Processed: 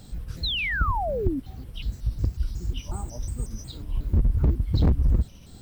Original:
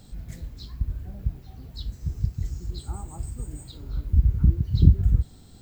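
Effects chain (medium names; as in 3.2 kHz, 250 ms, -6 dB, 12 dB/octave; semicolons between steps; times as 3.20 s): pitch shift switched off and on -5.5 st, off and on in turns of 182 ms; overload inside the chain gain 19.5 dB; painted sound fall, 0.43–1.40 s, 250–4300 Hz -31 dBFS; trim +3.5 dB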